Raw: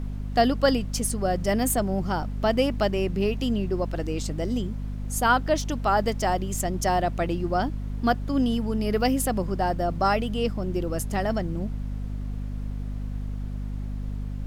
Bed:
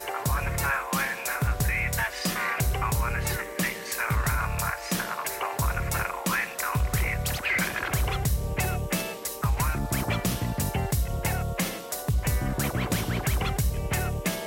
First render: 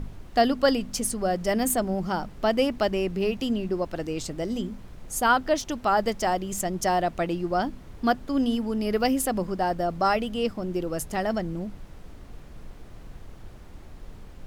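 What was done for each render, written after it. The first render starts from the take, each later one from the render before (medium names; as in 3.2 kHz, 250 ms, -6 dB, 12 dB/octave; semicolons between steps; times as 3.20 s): de-hum 50 Hz, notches 5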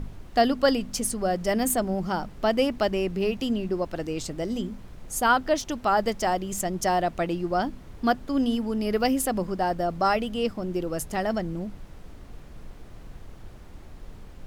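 no audible change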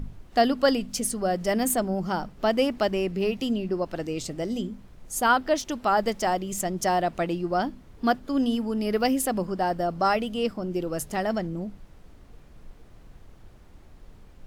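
noise print and reduce 6 dB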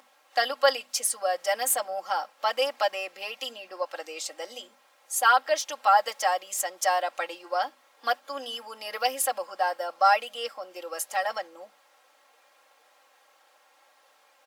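high-pass 630 Hz 24 dB/octave; comb 3.7 ms, depth 88%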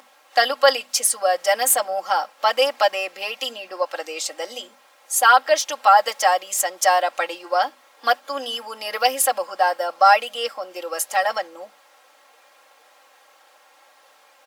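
trim +7.5 dB; peak limiter -3 dBFS, peak gain reduction 2.5 dB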